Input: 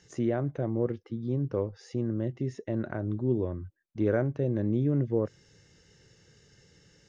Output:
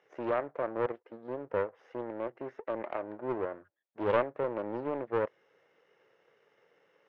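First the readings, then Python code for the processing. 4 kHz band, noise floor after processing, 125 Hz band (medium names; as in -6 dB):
no reading, -73 dBFS, -19.5 dB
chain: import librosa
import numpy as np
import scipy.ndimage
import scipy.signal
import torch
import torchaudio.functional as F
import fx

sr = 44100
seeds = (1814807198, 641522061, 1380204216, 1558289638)

y = fx.lower_of_two(x, sr, delay_ms=0.35)
y = scipy.signal.sosfilt(scipy.signal.cheby1(2, 1.0, [550.0, 1700.0], 'bandpass', fs=sr, output='sos'), y)
y = fx.doppler_dist(y, sr, depth_ms=0.38)
y = y * librosa.db_to_amplitude(4.5)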